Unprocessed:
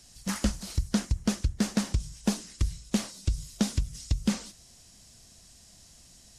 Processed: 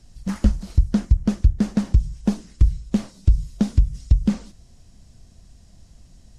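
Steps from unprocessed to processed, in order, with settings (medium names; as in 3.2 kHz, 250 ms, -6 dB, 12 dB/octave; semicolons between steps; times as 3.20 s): tilt EQ -3 dB/octave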